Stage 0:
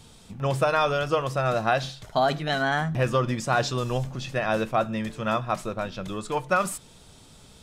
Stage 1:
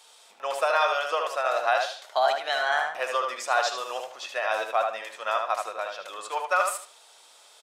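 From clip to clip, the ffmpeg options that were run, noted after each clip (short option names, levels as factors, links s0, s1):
-filter_complex "[0:a]highpass=f=590:w=0.5412,highpass=f=590:w=1.3066,asplit=2[s0][s1];[s1]adelay=76,lowpass=f=3900:p=1,volume=0.631,asplit=2[s2][s3];[s3]adelay=76,lowpass=f=3900:p=1,volume=0.29,asplit=2[s4][s5];[s5]adelay=76,lowpass=f=3900:p=1,volume=0.29,asplit=2[s6][s7];[s7]adelay=76,lowpass=f=3900:p=1,volume=0.29[s8];[s2][s4][s6][s8]amix=inputs=4:normalize=0[s9];[s0][s9]amix=inputs=2:normalize=0"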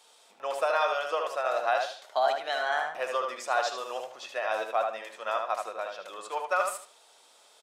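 -af "lowshelf=f=480:g=9.5,volume=0.531"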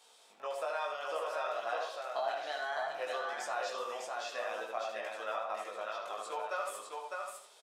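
-af "acompressor=threshold=0.0158:ratio=2,flanger=delay=17.5:depth=3:speed=0.64,aecho=1:1:604:0.668"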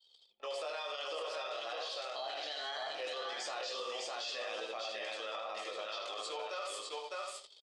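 -af "highpass=180,equalizer=f=190:t=q:w=4:g=-9,equalizer=f=680:t=q:w=4:g=-7,equalizer=f=970:t=q:w=4:g=-8,equalizer=f=1500:t=q:w=4:g=-9,equalizer=f=3200:t=q:w=4:g=7,equalizer=f=4600:t=q:w=4:g=10,lowpass=f=8500:w=0.5412,lowpass=f=8500:w=1.3066,alimiter=level_in=3.76:limit=0.0631:level=0:latency=1:release=24,volume=0.266,anlmdn=0.000631,volume=1.58"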